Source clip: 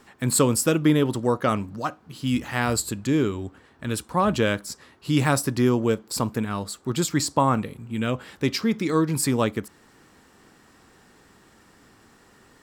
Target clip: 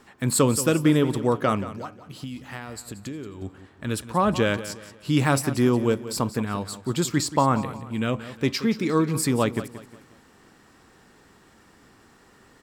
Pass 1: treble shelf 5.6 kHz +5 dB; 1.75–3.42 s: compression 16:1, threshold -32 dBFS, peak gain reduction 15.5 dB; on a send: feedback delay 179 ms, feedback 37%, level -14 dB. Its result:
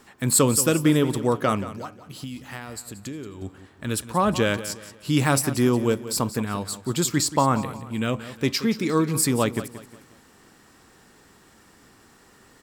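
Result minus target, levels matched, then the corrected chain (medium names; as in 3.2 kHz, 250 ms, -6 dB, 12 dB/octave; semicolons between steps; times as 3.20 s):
8 kHz band +4.5 dB
treble shelf 5.6 kHz -2.5 dB; 1.75–3.42 s: compression 16:1, threshold -32 dBFS, peak gain reduction 15 dB; on a send: feedback delay 179 ms, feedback 37%, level -14 dB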